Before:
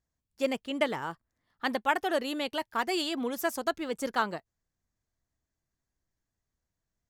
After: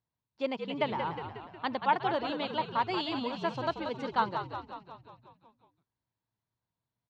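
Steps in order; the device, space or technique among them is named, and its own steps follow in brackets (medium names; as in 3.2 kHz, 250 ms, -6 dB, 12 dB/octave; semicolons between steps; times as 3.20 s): frequency-shifting delay pedal into a guitar cabinet (frequency-shifting echo 181 ms, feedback 60%, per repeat -62 Hz, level -7 dB; cabinet simulation 100–4300 Hz, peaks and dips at 120 Hz +9 dB, 940 Hz +9 dB, 1.8 kHz -4 dB, 3.9 kHz +4 dB); trim -4 dB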